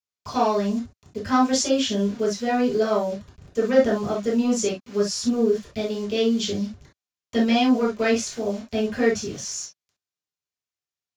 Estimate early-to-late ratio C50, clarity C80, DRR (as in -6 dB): 7.5 dB, 60.0 dB, -5.0 dB